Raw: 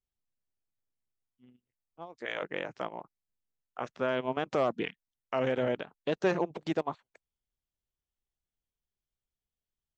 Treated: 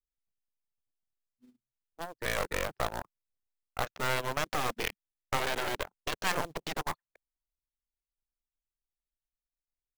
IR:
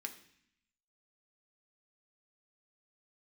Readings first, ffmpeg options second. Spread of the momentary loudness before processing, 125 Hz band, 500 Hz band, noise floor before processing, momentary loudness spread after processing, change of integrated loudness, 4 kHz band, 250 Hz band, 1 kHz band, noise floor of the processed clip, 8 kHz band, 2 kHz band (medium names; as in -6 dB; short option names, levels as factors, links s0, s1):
14 LU, 0.0 dB, -6.0 dB, under -85 dBFS, 12 LU, -1.0 dB, +7.0 dB, -8.0 dB, +2.5 dB, under -85 dBFS, no reading, +4.0 dB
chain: -filter_complex "[0:a]anlmdn=0.00631,afftfilt=real='re*lt(hypot(re,im),0.178)':imag='im*lt(hypot(re,im),0.178)':win_size=1024:overlap=0.75,lowshelf=f=63:g=-6,acrossover=split=450[s0][s1];[s0]acompressor=threshold=0.00178:ratio=2[s2];[s2][s1]amix=inputs=2:normalize=0,asplit=2[s3][s4];[s4]aeval=exprs='(mod(56.2*val(0)+1,2)-1)/56.2':c=same,volume=0.355[s5];[s3][s5]amix=inputs=2:normalize=0,aeval=exprs='0.112*(cos(1*acos(clip(val(0)/0.112,-1,1)))-cos(1*PI/2))+0.00501*(cos(3*acos(clip(val(0)/0.112,-1,1)))-cos(3*PI/2))+0.0141*(cos(4*acos(clip(val(0)/0.112,-1,1)))-cos(4*PI/2))+0.0355*(cos(6*acos(clip(val(0)/0.112,-1,1)))-cos(6*PI/2))':c=same,acrusher=bits=4:mode=log:mix=0:aa=0.000001,volume=1.58"